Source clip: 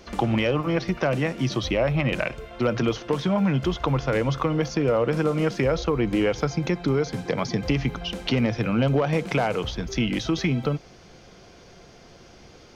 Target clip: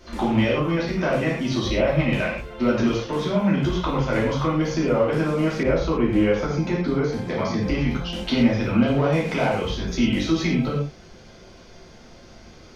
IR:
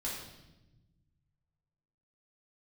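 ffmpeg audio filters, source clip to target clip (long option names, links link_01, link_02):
-filter_complex "[1:a]atrim=start_sample=2205,atrim=end_sample=6174[link_01];[0:a][link_01]afir=irnorm=-1:irlink=0,asettb=1/sr,asplit=3[link_02][link_03][link_04];[link_02]atrim=end=5.634[link_05];[link_03]atrim=start=5.63:end=7.91,asetpts=PTS-STARTPTS,afade=type=in:duration=0.004:curve=qsin,afade=type=out:start_time=2.276:duration=0.004:curve=qsin,adynamicequalizer=threshold=0.00708:dfrequency=3100:dqfactor=0.7:tfrequency=3100:tqfactor=0.7:attack=5:release=100:ratio=0.375:range=3:mode=cutabove:tftype=highshelf[link_06];[link_04]atrim=start=7.906[link_07];[link_05][link_06]acrossfade=duration=0.004:curve1=hsin:curve2=qsin[link_08];[link_08][link_07]acrossfade=duration=0.004:curve1=qsin:curve2=hsin"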